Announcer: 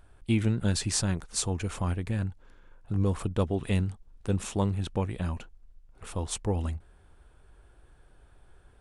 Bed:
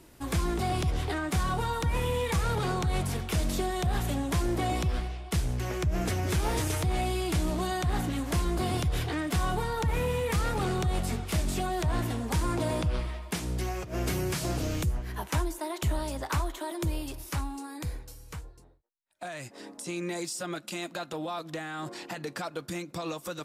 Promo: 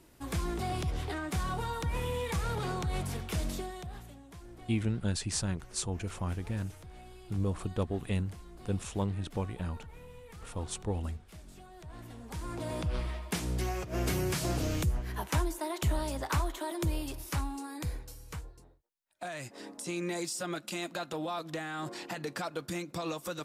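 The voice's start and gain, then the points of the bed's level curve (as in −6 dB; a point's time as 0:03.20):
4.40 s, −5.0 dB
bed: 0:03.47 −5 dB
0:04.19 −22 dB
0:11.71 −22 dB
0:13.11 −1 dB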